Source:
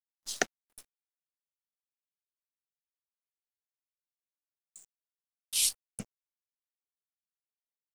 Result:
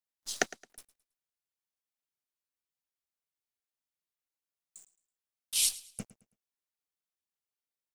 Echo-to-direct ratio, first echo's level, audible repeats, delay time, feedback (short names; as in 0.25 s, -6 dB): -18.0 dB, -18.5 dB, 2, 0.109 s, 31%